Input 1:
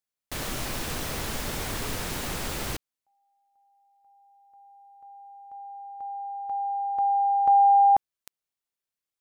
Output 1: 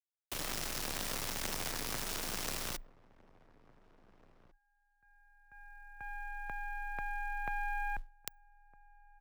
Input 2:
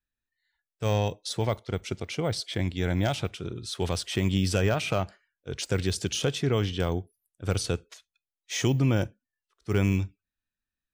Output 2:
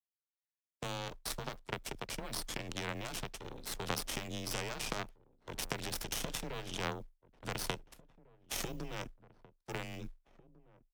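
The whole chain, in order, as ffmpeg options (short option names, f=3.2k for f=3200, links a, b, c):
-filter_complex "[0:a]highpass=f=74:p=1,adynamicequalizer=threshold=0.00224:dfrequency=5400:dqfactor=5.4:tfrequency=5400:tqfactor=5.4:attack=5:release=100:ratio=0.375:range=3:mode=boostabove:tftype=bell,acompressor=threshold=-35dB:ratio=6:attack=6.3:release=31:knee=1:detection=peak,aeval=exprs='0.168*(cos(1*acos(clip(val(0)/0.168,-1,1)))-cos(1*PI/2))+0.00596*(cos(2*acos(clip(val(0)/0.168,-1,1)))-cos(2*PI/2))+0.0188*(cos(6*acos(clip(val(0)/0.168,-1,1)))-cos(6*PI/2))+0.0237*(cos(7*acos(clip(val(0)/0.168,-1,1)))-cos(7*PI/2))':c=same,afreqshift=21,acrusher=bits=8:mode=log:mix=0:aa=0.000001,asplit=2[a][b];[b]adelay=1749,volume=-20dB,highshelf=f=4k:g=-39.4[c];[a][c]amix=inputs=2:normalize=0,volume=6dB"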